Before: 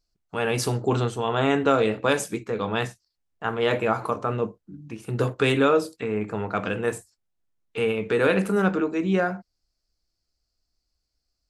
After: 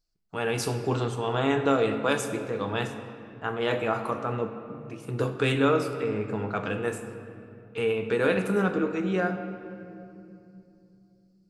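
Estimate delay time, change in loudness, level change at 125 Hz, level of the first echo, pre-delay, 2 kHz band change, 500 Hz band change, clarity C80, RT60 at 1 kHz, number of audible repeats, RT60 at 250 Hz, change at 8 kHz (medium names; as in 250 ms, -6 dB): no echo, -3.0 dB, -2.5 dB, no echo, 6 ms, -3.0 dB, -3.0 dB, 9.5 dB, 2.5 s, no echo, 4.1 s, -3.5 dB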